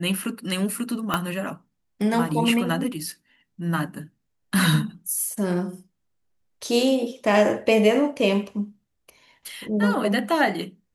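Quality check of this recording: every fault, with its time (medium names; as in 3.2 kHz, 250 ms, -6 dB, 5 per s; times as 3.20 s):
1.14 s: pop -8 dBFS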